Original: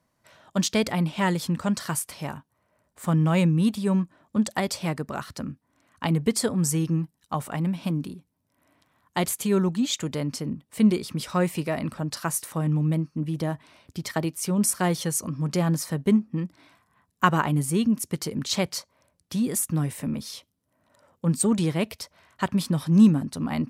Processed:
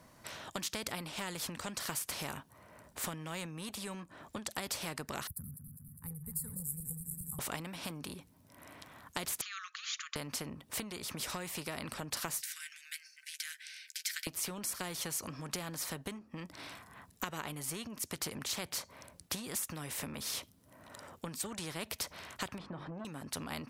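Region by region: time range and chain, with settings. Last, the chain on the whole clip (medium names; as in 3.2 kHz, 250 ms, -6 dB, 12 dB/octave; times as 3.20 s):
5.27–7.39 s: backward echo that repeats 102 ms, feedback 83%, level -11.5 dB + inverse Chebyshev band-stop 290–6500 Hz + treble shelf 6.5 kHz +5.5 dB
9.41–10.16 s: brick-wall FIR band-pass 1.1–7.2 kHz + treble shelf 2.6 kHz -11.5 dB
12.41–14.27 s: rippled Chebyshev high-pass 1.5 kHz, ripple 6 dB + doubling 13 ms -11.5 dB
22.58–23.05 s: low-pass 1.2 kHz + hum notches 50/100/150/200/250/300/350/400/450 Hz + transformer saturation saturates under 380 Hz
whole clip: compression 10:1, threshold -34 dBFS; spectrum-flattening compressor 2:1; trim +1 dB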